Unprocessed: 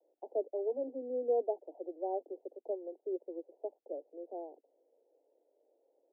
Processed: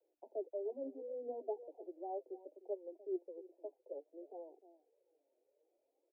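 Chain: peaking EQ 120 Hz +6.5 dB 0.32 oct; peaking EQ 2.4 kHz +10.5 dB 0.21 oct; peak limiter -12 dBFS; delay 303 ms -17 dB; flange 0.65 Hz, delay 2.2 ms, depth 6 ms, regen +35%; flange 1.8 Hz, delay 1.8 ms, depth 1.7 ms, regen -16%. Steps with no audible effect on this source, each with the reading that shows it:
peaking EQ 120 Hz: input has nothing below 230 Hz; peaking EQ 2.4 kHz: input has nothing above 960 Hz; peak limiter -12 dBFS: peak at its input -22.0 dBFS

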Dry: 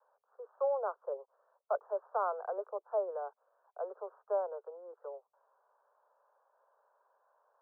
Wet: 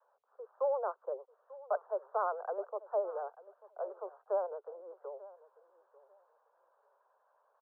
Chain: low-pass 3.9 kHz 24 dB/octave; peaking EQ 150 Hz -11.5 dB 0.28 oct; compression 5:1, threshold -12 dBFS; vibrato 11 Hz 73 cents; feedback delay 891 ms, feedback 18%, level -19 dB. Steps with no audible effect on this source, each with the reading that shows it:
low-pass 3.9 kHz: input has nothing above 1.5 kHz; peaking EQ 150 Hz: input has nothing below 340 Hz; compression, threshold -12 dBFS: peak at its input -21.5 dBFS

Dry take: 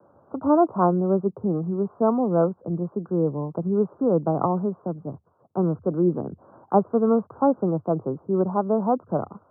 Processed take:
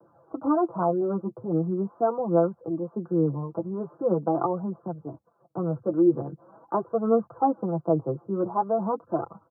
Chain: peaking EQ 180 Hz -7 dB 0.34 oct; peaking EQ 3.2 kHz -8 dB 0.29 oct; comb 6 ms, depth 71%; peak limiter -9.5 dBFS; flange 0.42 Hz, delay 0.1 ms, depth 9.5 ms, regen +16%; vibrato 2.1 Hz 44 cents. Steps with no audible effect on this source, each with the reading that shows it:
peaking EQ 3.2 kHz: input has nothing above 1.4 kHz

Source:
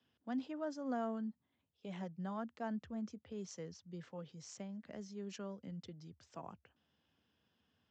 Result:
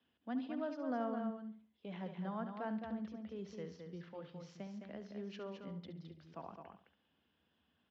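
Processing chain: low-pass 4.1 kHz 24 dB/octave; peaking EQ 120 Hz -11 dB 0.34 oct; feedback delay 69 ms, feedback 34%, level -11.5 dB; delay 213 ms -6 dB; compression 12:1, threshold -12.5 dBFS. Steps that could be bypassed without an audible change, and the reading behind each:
compression, threshold -12.5 dBFS: peak at its input -26.0 dBFS

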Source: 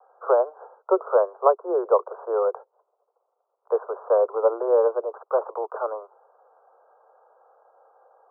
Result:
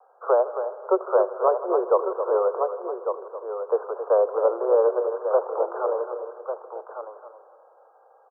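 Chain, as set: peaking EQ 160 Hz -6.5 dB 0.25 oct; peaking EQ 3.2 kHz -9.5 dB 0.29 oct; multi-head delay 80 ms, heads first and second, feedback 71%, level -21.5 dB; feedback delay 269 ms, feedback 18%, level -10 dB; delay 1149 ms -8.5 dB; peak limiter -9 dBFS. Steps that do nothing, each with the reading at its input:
peaking EQ 160 Hz: input has nothing below 320 Hz; peaking EQ 3.2 kHz: input has nothing above 1.4 kHz

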